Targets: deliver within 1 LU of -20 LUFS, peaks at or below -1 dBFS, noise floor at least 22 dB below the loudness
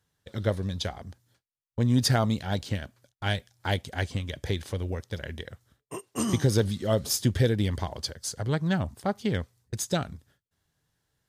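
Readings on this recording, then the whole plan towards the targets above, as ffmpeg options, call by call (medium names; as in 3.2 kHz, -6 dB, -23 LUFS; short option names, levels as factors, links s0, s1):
loudness -29.0 LUFS; peak level -10.5 dBFS; loudness target -20.0 LUFS
-> -af "volume=2.82"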